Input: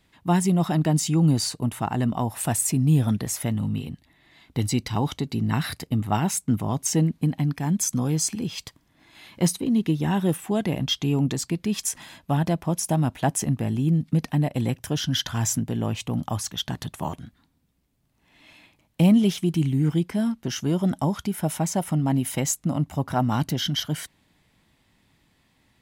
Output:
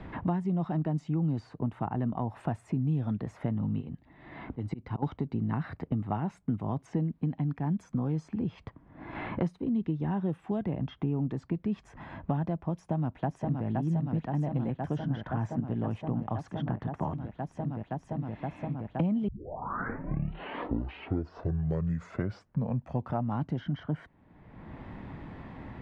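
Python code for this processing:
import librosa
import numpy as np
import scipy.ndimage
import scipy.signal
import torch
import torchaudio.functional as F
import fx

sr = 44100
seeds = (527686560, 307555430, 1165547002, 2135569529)

y = fx.auto_swell(x, sr, attack_ms=789.0, at=(3.8, 5.02), fade=0.02)
y = fx.echo_throw(y, sr, start_s=12.73, length_s=0.93, ms=520, feedback_pct=80, wet_db=-4.0)
y = fx.edit(y, sr, fx.tape_start(start_s=19.28, length_s=4.14), tone=tone)
y = scipy.signal.sosfilt(scipy.signal.butter(2, 1300.0, 'lowpass', fs=sr, output='sos'), y)
y = fx.band_squash(y, sr, depth_pct=100)
y = F.gain(torch.from_numpy(y), -7.5).numpy()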